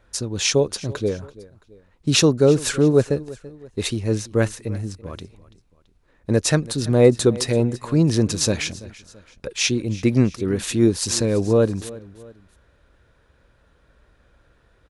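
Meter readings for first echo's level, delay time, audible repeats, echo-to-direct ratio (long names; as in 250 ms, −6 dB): −19.5 dB, 334 ms, 2, −18.5 dB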